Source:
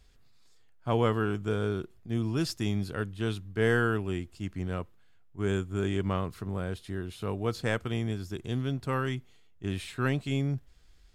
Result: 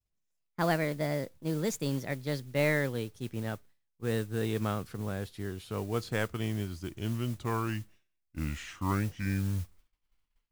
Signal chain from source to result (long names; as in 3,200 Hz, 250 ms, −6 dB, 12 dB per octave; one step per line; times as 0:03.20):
gliding playback speed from 151% → 61%
downward expander −45 dBFS
noise that follows the level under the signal 20 dB
level −2 dB